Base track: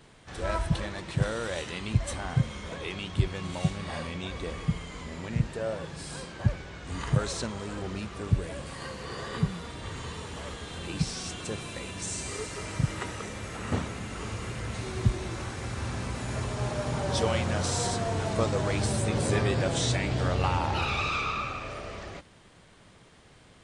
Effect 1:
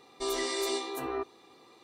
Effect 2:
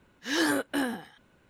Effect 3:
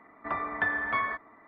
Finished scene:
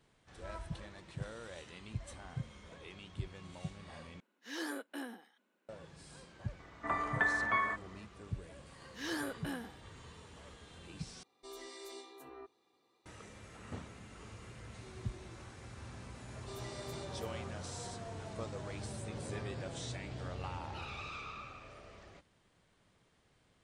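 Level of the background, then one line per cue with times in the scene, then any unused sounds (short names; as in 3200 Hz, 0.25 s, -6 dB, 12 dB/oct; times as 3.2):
base track -15.5 dB
4.2 replace with 2 -14.5 dB + steep high-pass 200 Hz 48 dB/oct
6.59 add 3 -3 dB
8.71 add 2 -12.5 dB
11.23 replace with 1 -17.5 dB
16.26 add 1 -16.5 dB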